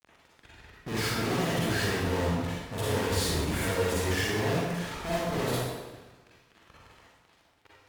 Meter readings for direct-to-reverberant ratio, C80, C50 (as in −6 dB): −7.5 dB, −0.5 dB, −4.0 dB